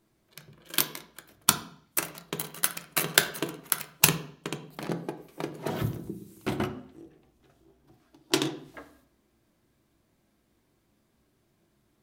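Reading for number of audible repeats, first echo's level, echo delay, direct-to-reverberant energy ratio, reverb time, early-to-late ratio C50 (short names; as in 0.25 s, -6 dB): none, none, none, 5.5 dB, 0.55 s, 12.5 dB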